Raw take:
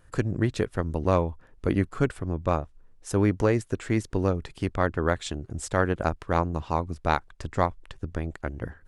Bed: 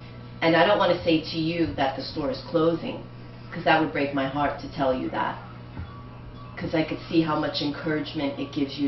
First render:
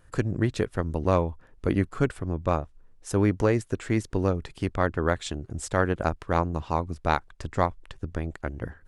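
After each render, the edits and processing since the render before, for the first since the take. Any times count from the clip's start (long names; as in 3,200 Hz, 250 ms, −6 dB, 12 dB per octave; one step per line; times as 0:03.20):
no processing that can be heard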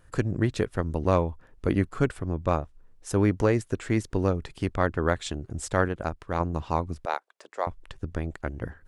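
0:05.88–0:06.40: clip gain −4.5 dB
0:07.05–0:07.67: four-pole ladder high-pass 400 Hz, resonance 30%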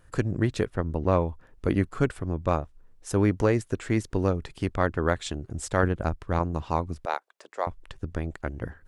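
0:00.70–0:01.21: high-shelf EQ 3,900 Hz −11 dB
0:05.83–0:06.39: low-shelf EQ 230 Hz +7.5 dB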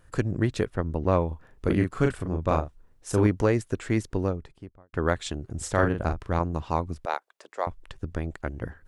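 0:01.27–0:03.27: double-tracking delay 38 ms −4.5 dB
0:03.96–0:04.93: fade out and dull
0:05.57–0:06.30: double-tracking delay 40 ms −6 dB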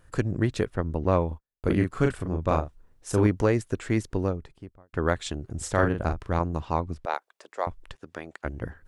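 0:01.31–0:02.03: noise gate −43 dBFS, range −43 dB
0:06.65–0:07.14: high-shelf EQ 8,800 Hz −11 dB
0:07.95–0:08.45: meter weighting curve A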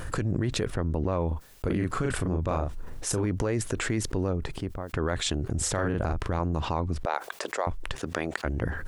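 brickwall limiter −19 dBFS, peak gain reduction 11 dB
envelope flattener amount 70%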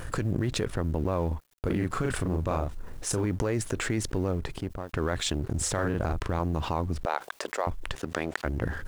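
dead-zone distortion −48 dBFS
log-companded quantiser 8 bits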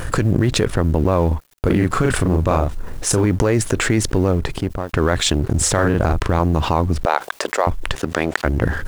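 level +11.5 dB
brickwall limiter −1 dBFS, peak gain reduction 2.5 dB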